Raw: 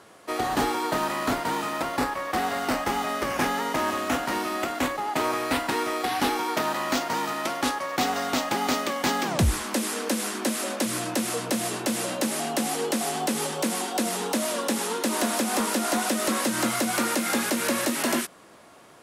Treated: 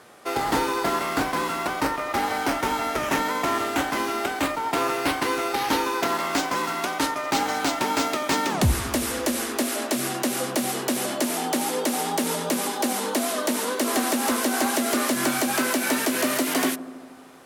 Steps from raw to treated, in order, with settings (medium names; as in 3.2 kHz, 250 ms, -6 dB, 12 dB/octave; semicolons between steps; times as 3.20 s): tape speed +9%; feedback echo behind a low-pass 77 ms, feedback 74%, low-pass 1 kHz, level -14 dB; trim +1.5 dB